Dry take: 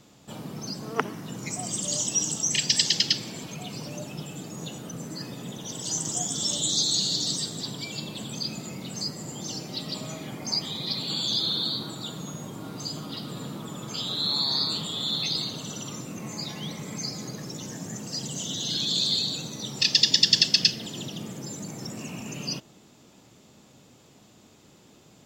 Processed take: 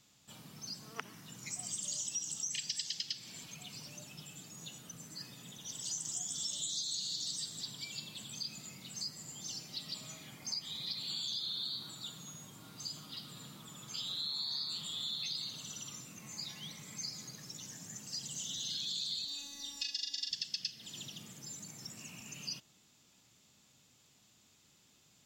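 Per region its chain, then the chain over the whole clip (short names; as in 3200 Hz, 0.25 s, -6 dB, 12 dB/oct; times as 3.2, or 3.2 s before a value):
19.25–20.31 robotiser 282 Hz + doubler 40 ms -3.5 dB
whole clip: passive tone stack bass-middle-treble 5-5-5; compressor 4:1, threshold -36 dBFS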